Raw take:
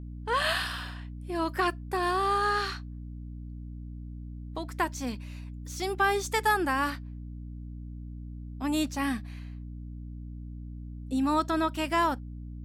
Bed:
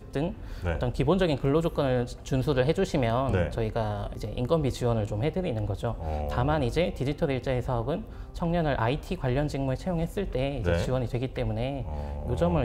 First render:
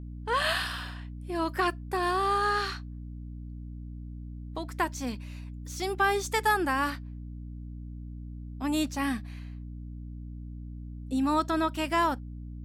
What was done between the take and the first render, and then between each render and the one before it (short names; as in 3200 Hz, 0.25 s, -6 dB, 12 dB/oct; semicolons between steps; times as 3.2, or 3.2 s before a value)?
nothing audible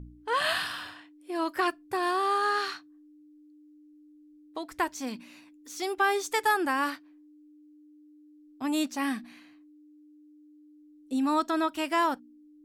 de-hum 60 Hz, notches 4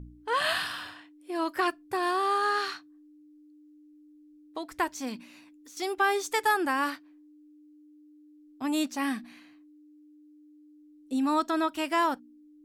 5.25–5.77 compressor, threshold -47 dBFS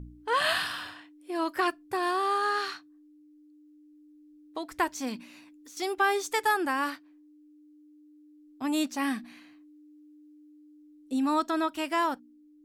vocal rider within 5 dB 2 s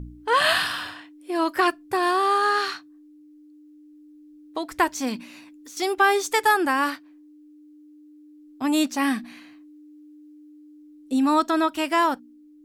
gain +6.5 dB